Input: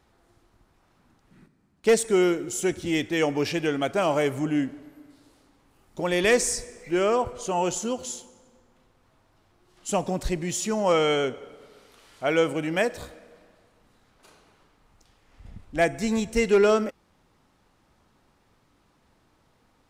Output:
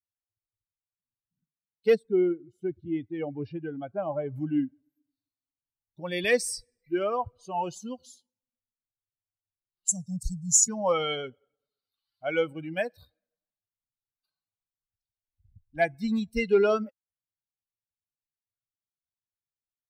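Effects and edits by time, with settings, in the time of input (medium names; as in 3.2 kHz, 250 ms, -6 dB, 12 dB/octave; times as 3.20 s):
1.95–4.36 s: low-pass 1 kHz 6 dB/octave
9.88–10.68 s: FFT filter 190 Hz 0 dB, 290 Hz -27 dB, 460 Hz -9 dB, 1.4 kHz -22 dB, 2.4 kHz -27 dB, 6.8 kHz +15 dB, 14 kHz 0 dB
whole clip: expander on every frequency bin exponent 2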